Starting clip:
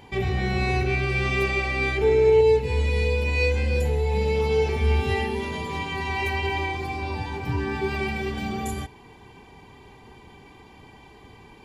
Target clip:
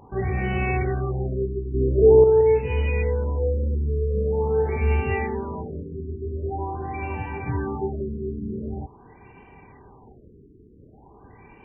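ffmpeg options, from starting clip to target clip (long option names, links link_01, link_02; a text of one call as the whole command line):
ffmpeg -i in.wav -filter_complex "[0:a]asettb=1/sr,asplit=3[link_01][link_02][link_03];[link_01]atrim=end=1.744[link_04];[link_02]atrim=start=1.74:end=2.24,asetpts=PTS-STARTPTS,afade=type=in:duration=0.004:curve=qsin,afade=type=out:start_time=0.496:duration=0.004:curve=qsin,acontrast=84[link_05];[link_03]atrim=start=2.236[link_06];[link_04][link_05]acrossfade=duration=0.004:curve1=hsin:curve2=qsin[link_07];[link_07][link_06]acrossfade=duration=0.004:curve1=qsin:curve2=hsin,afftfilt=real='re*lt(b*sr/1024,440*pow(3100/440,0.5+0.5*sin(2*PI*0.45*pts/sr)))':imag='im*lt(b*sr/1024,440*pow(3100/440,0.5+0.5*sin(2*PI*0.45*pts/sr)))':win_size=1024:overlap=0.75" out.wav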